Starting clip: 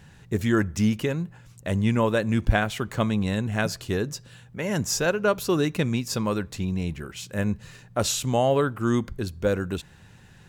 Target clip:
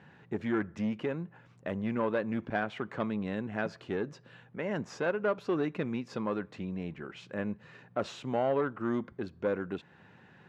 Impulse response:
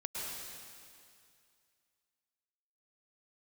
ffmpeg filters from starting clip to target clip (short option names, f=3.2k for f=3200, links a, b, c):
-filter_complex "[0:a]asplit=2[a][b];[b]acompressor=threshold=-37dB:ratio=6,volume=0dB[c];[a][c]amix=inputs=2:normalize=0,aeval=exprs='(tanh(5.62*val(0)+0.3)-tanh(0.3))/5.62':c=same,highpass=210,lowpass=2.1k,volume=-5.5dB"